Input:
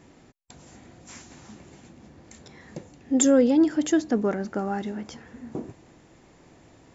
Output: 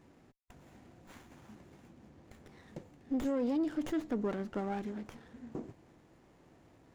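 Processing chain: limiter -18 dBFS, peak gain reduction 10.5 dB; running maximum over 9 samples; gain -8 dB

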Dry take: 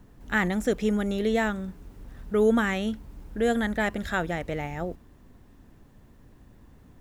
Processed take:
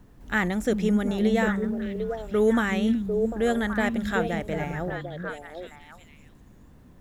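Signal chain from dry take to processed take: delay with a stepping band-pass 0.374 s, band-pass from 190 Hz, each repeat 1.4 oct, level -0.5 dB

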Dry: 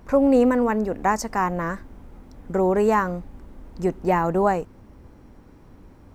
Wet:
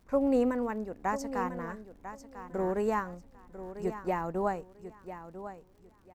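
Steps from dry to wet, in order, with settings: crackle 93/s -40 dBFS; feedback echo 0.996 s, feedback 27%, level -8 dB; upward expander 1.5:1, over -31 dBFS; gain -8.5 dB

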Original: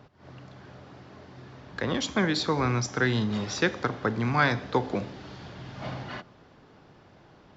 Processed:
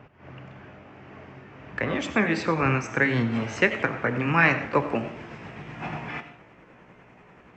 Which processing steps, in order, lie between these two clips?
gliding pitch shift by +3.5 st starting unshifted; resonant high shelf 3200 Hz -7.5 dB, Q 3; on a send at -13.5 dB: reverb RT60 0.35 s, pre-delay 54 ms; on the sum: warbling echo 87 ms, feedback 51%, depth 197 cents, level -17 dB; gain +3 dB

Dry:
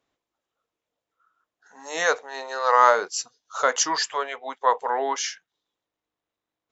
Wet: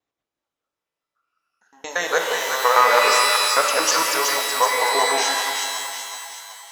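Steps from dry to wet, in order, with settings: local time reversal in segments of 0.115 s; gate -41 dBFS, range -8 dB; split-band echo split 760 Hz, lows 0.168 s, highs 0.374 s, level -5 dB; shimmer reverb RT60 1.5 s, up +12 st, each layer -2 dB, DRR 4 dB; gain +1 dB

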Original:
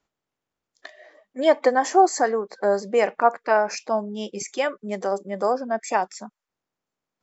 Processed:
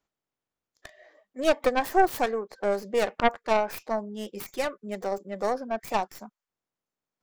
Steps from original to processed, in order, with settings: tracing distortion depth 0.35 ms; gain -5.5 dB

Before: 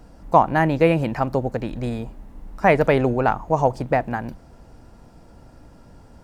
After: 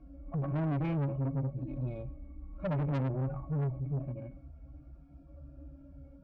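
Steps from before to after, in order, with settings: median-filter separation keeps harmonic; octave resonator C#, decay 0.14 s; tube stage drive 36 dB, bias 0.25; gain +7 dB

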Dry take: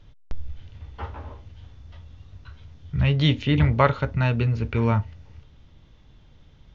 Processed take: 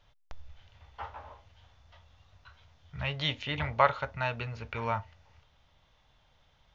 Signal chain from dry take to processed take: resonant low shelf 480 Hz -11.5 dB, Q 1.5; gain -4.5 dB

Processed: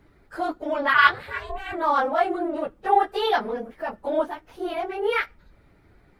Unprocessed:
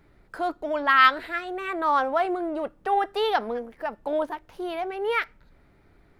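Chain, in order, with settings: phase scrambler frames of 50 ms; 0.93–1.72 ring modulator 140 Hz -> 440 Hz; gain +1.5 dB

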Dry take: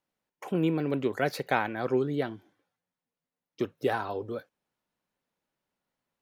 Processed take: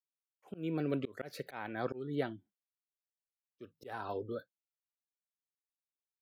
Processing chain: spectral noise reduction 22 dB; gate with hold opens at -54 dBFS; auto swell 0.265 s; gain -4.5 dB

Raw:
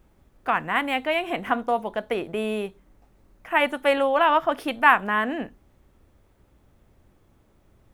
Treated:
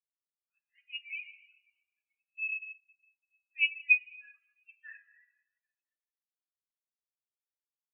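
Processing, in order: bin magnitudes rounded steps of 30 dB; resonant high-pass 2600 Hz, resonance Q 4.5; high shelf 4100 Hz -10.5 dB; plate-style reverb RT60 4.4 s, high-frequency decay 0.95×, DRR -3.5 dB; spectral expander 4:1; gain -8.5 dB

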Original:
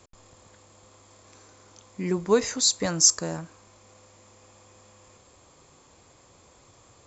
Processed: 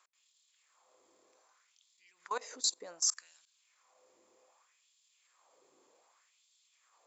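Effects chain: level quantiser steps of 21 dB; LFO high-pass sine 0.65 Hz 340–3700 Hz; gain -7.5 dB

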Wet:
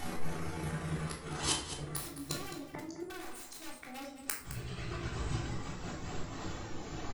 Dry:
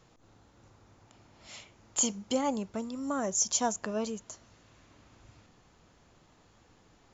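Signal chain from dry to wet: gliding pitch shift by +8.5 st ending unshifted; reverb removal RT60 1.7 s; in parallel at -1 dB: compressor 16:1, threshold -43 dBFS, peak gain reduction 20 dB; on the sum: wrapped overs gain 26 dB; vocal rider within 4 dB 0.5 s; flipped gate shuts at -30 dBFS, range -26 dB; on a send: echo 0.213 s -11.5 dB; on the sum: shoebox room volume 730 m³, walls furnished, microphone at 3.5 m; gain +9 dB

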